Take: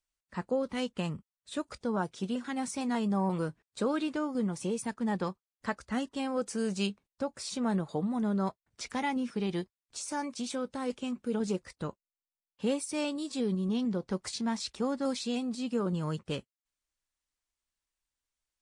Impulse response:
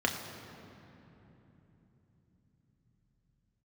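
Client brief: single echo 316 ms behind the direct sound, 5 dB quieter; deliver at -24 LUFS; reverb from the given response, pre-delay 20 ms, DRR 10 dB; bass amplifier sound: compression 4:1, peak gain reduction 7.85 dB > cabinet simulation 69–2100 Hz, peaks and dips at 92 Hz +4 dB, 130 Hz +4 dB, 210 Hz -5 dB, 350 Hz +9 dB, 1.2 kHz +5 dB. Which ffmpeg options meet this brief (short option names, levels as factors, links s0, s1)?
-filter_complex "[0:a]aecho=1:1:316:0.562,asplit=2[s0][s1];[1:a]atrim=start_sample=2205,adelay=20[s2];[s1][s2]afir=irnorm=-1:irlink=0,volume=0.106[s3];[s0][s3]amix=inputs=2:normalize=0,acompressor=threshold=0.0251:ratio=4,highpass=f=69:w=0.5412,highpass=f=69:w=1.3066,equalizer=f=92:t=q:w=4:g=4,equalizer=f=130:t=q:w=4:g=4,equalizer=f=210:t=q:w=4:g=-5,equalizer=f=350:t=q:w=4:g=9,equalizer=f=1200:t=q:w=4:g=5,lowpass=f=2100:w=0.5412,lowpass=f=2100:w=1.3066,volume=3.98"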